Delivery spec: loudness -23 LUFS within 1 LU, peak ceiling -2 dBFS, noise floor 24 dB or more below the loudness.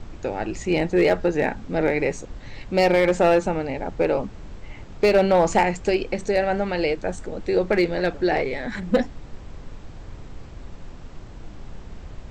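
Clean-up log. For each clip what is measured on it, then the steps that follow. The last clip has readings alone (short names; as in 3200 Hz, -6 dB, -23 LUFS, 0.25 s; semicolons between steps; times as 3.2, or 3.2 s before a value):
clipped 0.3%; flat tops at -10.5 dBFS; noise floor -41 dBFS; noise floor target -47 dBFS; loudness -22.5 LUFS; peak -10.5 dBFS; loudness target -23.0 LUFS
-> clip repair -10.5 dBFS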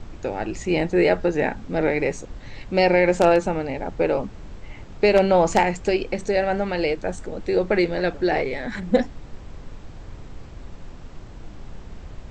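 clipped 0.0%; noise floor -41 dBFS; noise floor target -46 dBFS
-> noise print and reduce 6 dB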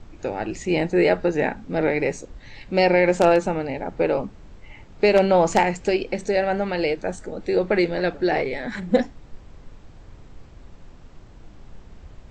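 noise floor -47 dBFS; loudness -22.0 LUFS; peak -2.0 dBFS; loudness target -23.0 LUFS
-> gain -1 dB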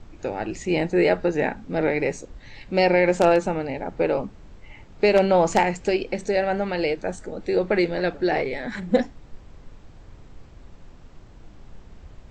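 loudness -23.0 LUFS; peak -3.0 dBFS; noise floor -48 dBFS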